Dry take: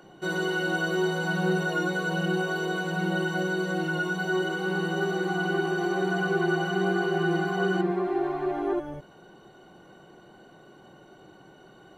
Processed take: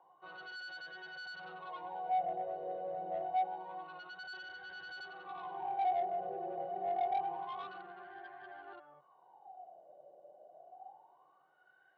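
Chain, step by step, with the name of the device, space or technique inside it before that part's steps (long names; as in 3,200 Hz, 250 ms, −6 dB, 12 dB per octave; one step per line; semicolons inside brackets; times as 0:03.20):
wah-wah guitar rig (LFO wah 0.27 Hz 580–1,600 Hz, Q 16; tube saturation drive 41 dB, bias 0.25; loudspeaker in its box 110–4,300 Hz, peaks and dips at 140 Hz +9 dB, 240 Hz −4 dB, 510 Hz +6 dB, 740 Hz +10 dB, 1,400 Hz −10 dB, 3,500 Hz +5 dB)
level +3.5 dB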